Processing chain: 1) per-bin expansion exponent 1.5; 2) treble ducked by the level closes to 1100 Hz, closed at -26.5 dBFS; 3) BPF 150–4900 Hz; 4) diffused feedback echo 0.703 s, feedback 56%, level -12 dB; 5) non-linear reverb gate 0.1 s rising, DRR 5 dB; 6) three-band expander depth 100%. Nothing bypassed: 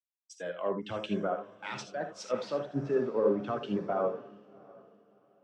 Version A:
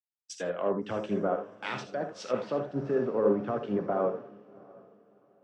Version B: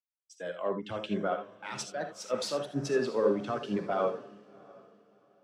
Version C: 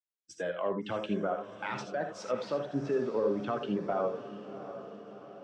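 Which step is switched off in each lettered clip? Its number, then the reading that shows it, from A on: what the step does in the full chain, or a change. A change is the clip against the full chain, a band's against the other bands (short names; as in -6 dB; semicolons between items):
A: 1, 4 kHz band -3.0 dB; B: 2, 8 kHz band +7.0 dB; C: 6, 2 kHz band +2.5 dB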